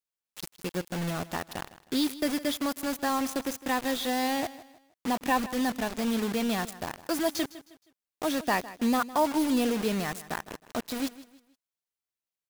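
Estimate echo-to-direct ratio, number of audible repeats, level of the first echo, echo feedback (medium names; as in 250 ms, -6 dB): -16.5 dB, 2, -17.0 dB, 35%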